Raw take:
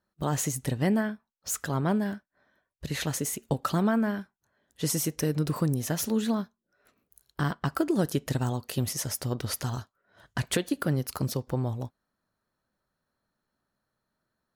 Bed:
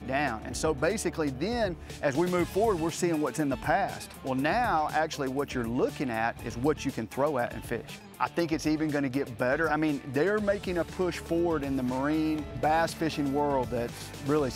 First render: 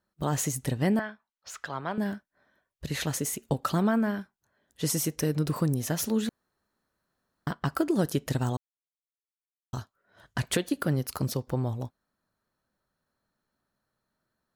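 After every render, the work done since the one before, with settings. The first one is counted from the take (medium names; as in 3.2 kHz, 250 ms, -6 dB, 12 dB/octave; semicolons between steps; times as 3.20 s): 0.99–1.98 s: three-band isolator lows -13 dB, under 590 Hz, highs -20 dB, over 5 kHz; 6.29–7.47 s: room tone; 8.57–9.73 s: mute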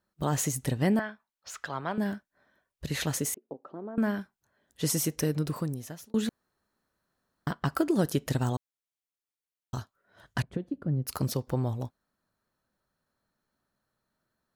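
3.34–3.98 s: ladder band-pass 450 Hz, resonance 30%; 5.20–6.14 s: fade out; 10.42–11.07 s: band-pass filter 110 Hz, Q 0.7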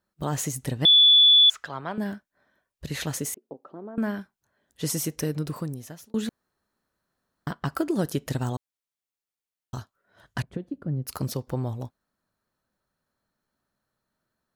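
0.85–1.50 s: bleep 3.45 kHz -12 dBFS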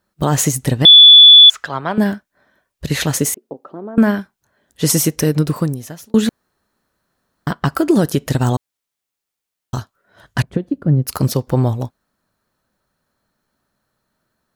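loudness maximiser +17.5 dB; upward expansion 1.5:1, over -20 dBFS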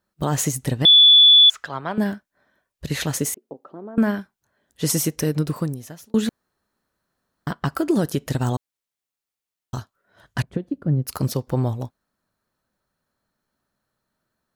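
trim -6.5 dB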